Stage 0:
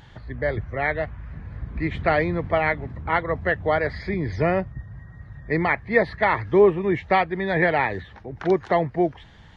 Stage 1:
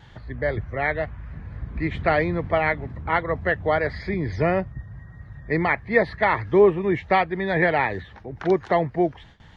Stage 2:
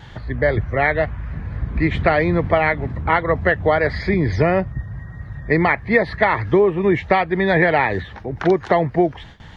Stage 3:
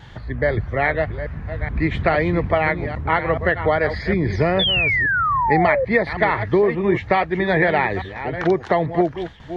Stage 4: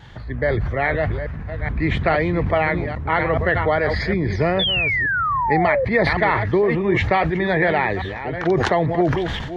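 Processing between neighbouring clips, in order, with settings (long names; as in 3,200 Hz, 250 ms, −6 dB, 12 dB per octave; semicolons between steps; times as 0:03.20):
noise gate with hold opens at −39 dBFS
downward compressor 6 to 1, threshold −20 dBFS, peak gain reduction 9.5 dB; level +8.5 dB
delay that plays each chunk backwards 422 ms, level −10.5 dB; sound drawn into the spectrogram fall, 0:04.59–0:05.85, 500–3,600 Hz −17 dBFS; level −2 dB
level that may fall only so fast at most 31 dB per second; level −1.5 dB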